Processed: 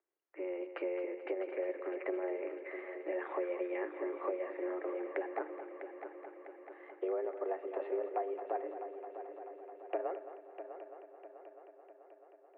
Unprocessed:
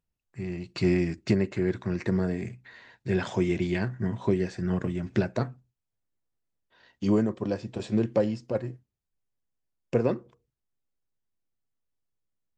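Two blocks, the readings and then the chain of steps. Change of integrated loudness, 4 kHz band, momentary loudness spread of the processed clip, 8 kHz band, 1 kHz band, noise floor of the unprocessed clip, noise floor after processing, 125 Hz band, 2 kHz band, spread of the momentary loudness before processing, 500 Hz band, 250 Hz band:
-11.5 dB, under -20 dB, 16 LU, no reading, -0.5 dB, -85 dBFS, -61 dBFS, under -40 dB, -8.5 dB, 11 LU, -6.0 dB, -16.0 dB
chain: compression 6:1, threshold -35 dBFS, peak gain reduction 16 dB; mistuned SSB +180 Hz 170–2100 Hz; multi-head delay 217 ms, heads first and third, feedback 70%, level -11.5 dB; trim +1.5 dB

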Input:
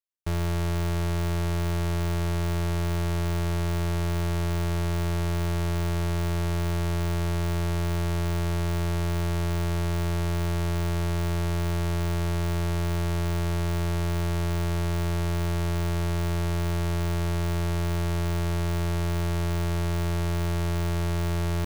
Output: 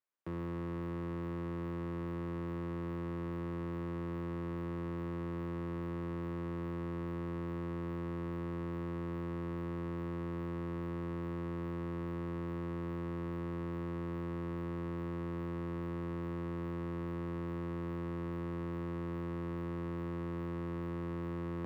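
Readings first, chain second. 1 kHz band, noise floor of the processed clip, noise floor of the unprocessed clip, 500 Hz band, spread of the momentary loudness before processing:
-11.0 dB, -39 dBFS, -26 dBFS, -8.5 dB, 0 LU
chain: high-pass 110 Hz 12 dB/octave; peaking EQ 1.1 kHz +2.5 dB 0.37 oct; hard clipper -34.5 dBFS, distortion -2 dB; three-band isolator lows -13 dB, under 200 Hz, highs -19 dB, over 2.5 kHz; band-stop 6.3 kHz, Q 21; trim +5 dB

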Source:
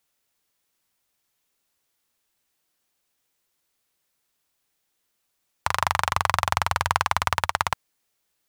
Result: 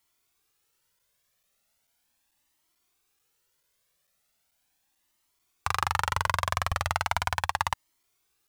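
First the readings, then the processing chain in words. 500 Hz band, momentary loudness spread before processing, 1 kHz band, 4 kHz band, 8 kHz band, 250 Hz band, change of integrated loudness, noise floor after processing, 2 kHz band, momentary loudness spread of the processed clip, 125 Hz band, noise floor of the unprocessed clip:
-5.0 dB, 5 LU, -5.0 dB, -4.5 dB, -4.5 dB, -4.5 dB, -4.5 dB, -75 dBFS, -4.0 dB, 4 LU, -1.5 dB, -76 dBFS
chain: crackling interface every 0.44 s, samples 256, zero, from 0.99 s; loudness maximiser +7 dB; Shepard-style flanger rising 0.38 Hz; trim -1.5 dB

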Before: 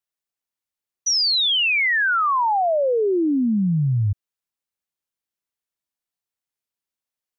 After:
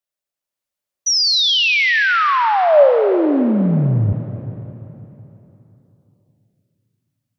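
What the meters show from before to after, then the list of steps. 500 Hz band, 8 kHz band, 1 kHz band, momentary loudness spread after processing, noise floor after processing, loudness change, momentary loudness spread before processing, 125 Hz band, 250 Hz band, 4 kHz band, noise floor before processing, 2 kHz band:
+8.0 dB, no reading, +4.5 dB, 14 LU, under -85 dBFS, +4.5 dB, 7 LU, +4.0 dB, +4.0 dB, +4.0 dB, under -85 dBFS, +4.0 dB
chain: peaking EQ 580 Hz +9.5 dB 0.27 oct; level rider gain up to 3.5 dB; algorithmic reverb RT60 3.5 s, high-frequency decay 0.85×, pre-delay 40 ms, DRR 8 dB

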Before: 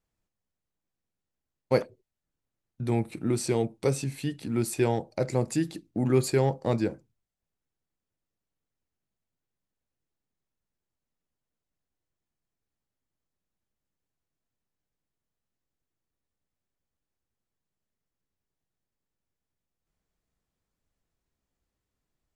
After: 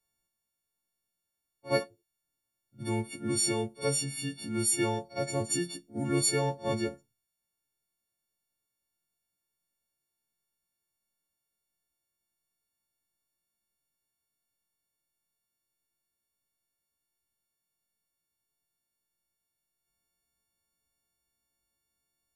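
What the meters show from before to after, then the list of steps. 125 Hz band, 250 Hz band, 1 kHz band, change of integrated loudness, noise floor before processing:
-6.5 dB, -4.5 dB, -2.0 dB, -2.0 dB, under -85 dBFS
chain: partials quantised in pitch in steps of 4 st; pre-echo 60 ms -18 dB; trim -5 dB

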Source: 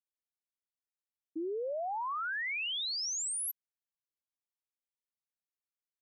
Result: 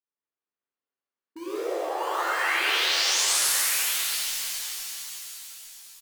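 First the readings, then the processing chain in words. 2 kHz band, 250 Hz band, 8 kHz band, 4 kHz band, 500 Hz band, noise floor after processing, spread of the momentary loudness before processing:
+11.5 dB, +5.5 dB, +12.5 dB, +13.0 dB, +7.5 dB, under -85 dBFS, 8 LU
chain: high-pass 270 Hz 12 dB/octave; peaking EQ 660 Hz -13.5 dB 0.58 oct; on a send: delay 1142 ms -10.5 dB; on the sum: level-controlled noise filter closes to 1.2 kHz, open at -38 dBFS; in parallel at -10.5 dB: integer overflow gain 37 dB; on the sum: pitch-shifted reverb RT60 3.6 s, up +7 st, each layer -2 dB, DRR -9.5 dB

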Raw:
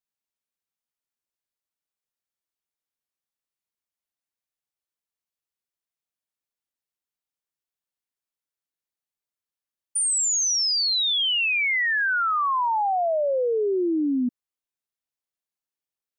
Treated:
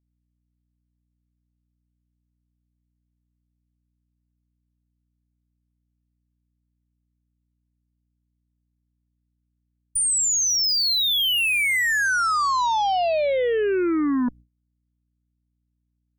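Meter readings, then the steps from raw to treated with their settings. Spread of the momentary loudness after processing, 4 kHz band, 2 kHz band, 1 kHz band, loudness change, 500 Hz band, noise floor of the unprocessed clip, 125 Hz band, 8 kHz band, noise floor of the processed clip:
4 LU, +1.5 dB, +1.5 dB, +1.5 dB, +1.5 dB, +1.5 dB, under -85 dBFS, no reading, +1.5 dB, -75 dBFS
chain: Chebyshev shaper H 2 -22 dB, 4 -13 dB, 6 -25 dB, 7 -25 dB, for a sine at -19.5 dBFS; hum 60 Hz, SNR 26 dB; gate with hold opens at -43 dBFS; trim +1.5 dB

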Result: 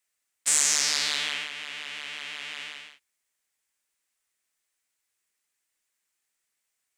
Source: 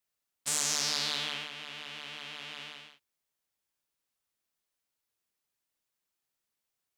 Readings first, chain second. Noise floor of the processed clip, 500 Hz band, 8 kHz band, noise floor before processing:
-81 dBFS, 0.0 dB, +8.5 dB, under -85 dBFS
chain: graphic EQ 125/2000/8000 Hz -7/+9/+10 dB

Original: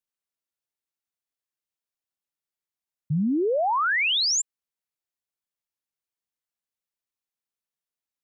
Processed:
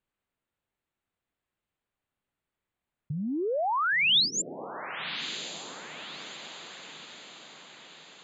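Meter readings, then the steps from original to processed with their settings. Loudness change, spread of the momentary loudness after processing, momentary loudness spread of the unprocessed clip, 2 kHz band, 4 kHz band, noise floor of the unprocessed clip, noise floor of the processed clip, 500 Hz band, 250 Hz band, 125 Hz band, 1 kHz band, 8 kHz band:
-5.0 dB, 23 LU, 8 LU, -1.5 dB, +0.5 dB, under -85 dBFS, under -85 dBFS, -5.0 dB, -7.0 dB, -8.0 dB, -3.5 dB, no reading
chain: boxcar filter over 8 samples; bass shelf 220 Hz +8 dB; compressor with a negative ratio -30 dBFS, ratio -1; on a send: echo that smears into a reverb 1118 ms, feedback 52%, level -11 dB; on the sum: trim +3 dB

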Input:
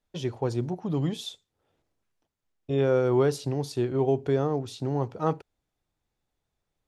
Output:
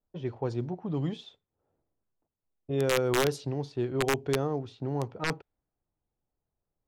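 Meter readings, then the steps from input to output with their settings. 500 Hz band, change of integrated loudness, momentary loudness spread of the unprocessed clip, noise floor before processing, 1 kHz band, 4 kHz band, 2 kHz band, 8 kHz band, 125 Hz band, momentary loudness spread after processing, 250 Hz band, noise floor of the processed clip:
-4.0 dB, -3.0 dB, 8 LU, -83 dBFS, -2.0 dB, +2.0 dB, +7.5 dB, +4.5 dB, -4.0 dB, 8 LU, -4.0 dB, under -85 dBFS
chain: integer overflow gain 14 dB; level-controlled noise filter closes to 1 kHz, open at -19 dBFS; trim -3.5 dB

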